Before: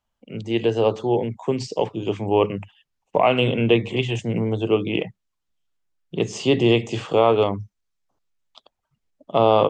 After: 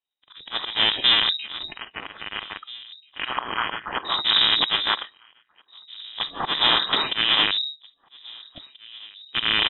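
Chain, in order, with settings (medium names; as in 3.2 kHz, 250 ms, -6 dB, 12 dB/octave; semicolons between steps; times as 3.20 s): cycle switcher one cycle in 3, inverted; 1.68–4.05 s: high-pass 920 Hz 12 dB/octave; spectral noise reduction 19 dB; dynamic bell 2.5 kHz, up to +3 dB, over -36 dBFS, Q 1.1; slow attack 324 ms; peak limiter -16 dBFS, peak gain reduction 10 dB; echo from a far wall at 280 m, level -20 dB; reverberation RT60 0.10 s, pre-delay 3 ms, DRR 16 dB; frequency inversion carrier 3.8 kHz; trim +1 dB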